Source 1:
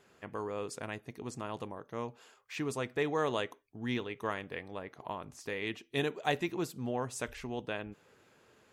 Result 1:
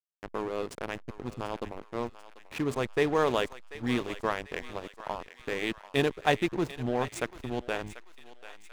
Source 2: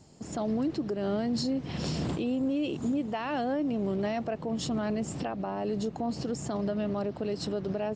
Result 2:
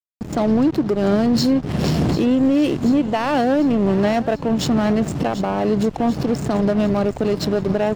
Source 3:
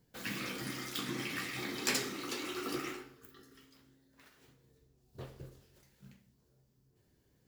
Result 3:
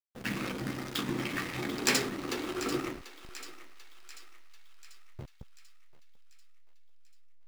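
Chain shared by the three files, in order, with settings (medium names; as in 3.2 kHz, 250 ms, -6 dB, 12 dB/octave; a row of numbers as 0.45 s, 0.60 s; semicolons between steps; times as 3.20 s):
hysteresis with a dead band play -34.5 dBFS; thinning echo 740 ms, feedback 55%, high-pass 970 Hz, level -12.5 dB; peak normalisation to -9 dBFS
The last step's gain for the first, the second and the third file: +6.5 dB, +13.5 dB, +6.5 dB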